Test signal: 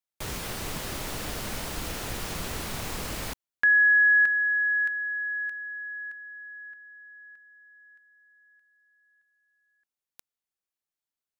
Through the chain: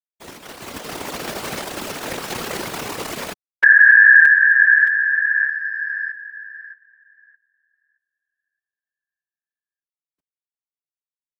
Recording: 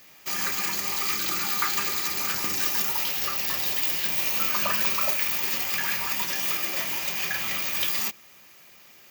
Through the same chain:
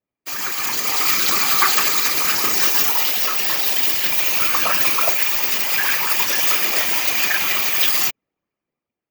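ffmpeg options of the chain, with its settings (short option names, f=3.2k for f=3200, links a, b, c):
-af "anlmdn=10,highpass=250,dynaudnorm=f=230:g=7:m=11dB,afftfilt=real='hypot(re,im)*cos(2*PI*random(0))':imag='hypot(re,im)*sin(2*PI*random(1))':win_size=512:overlap=0.75,alimiter=level_in=8.5dB:limit=-1dB:release=50:level=0:latency=1,volume=-1dB"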